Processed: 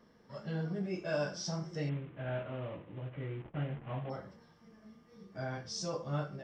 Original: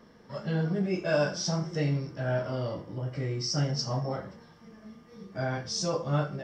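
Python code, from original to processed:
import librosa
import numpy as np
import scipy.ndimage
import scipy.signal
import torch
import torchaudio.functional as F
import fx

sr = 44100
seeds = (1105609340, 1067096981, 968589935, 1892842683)

y = fx.cvsd(x, sr, bps=16000, at=(1.89, 4.1))
y = y * librosa.db_to_amplitude(-8.0)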